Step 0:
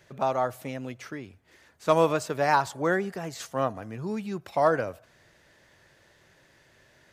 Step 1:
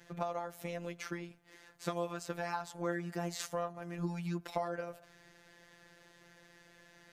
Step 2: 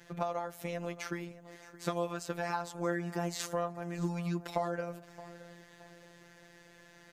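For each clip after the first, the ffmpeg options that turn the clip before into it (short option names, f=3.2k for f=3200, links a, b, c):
-af "acompressor=threshold=-33dB:ratio=6,afftfilt=real='hypot(re,im)*cos(PI*b)':imag='0':win_size=1024:overlap=0.75,volume=2.5dB"
-af "aecho=1:1:621|1242|1863:0.126|0.0441|0.0154,volume=2.5dB"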